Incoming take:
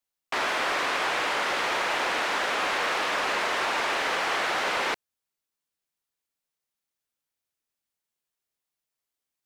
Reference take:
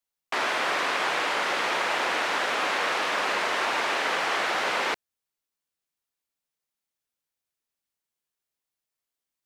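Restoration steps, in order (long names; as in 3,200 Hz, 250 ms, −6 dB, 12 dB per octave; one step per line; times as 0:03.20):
clipped peaks rebuilt −21 dBFS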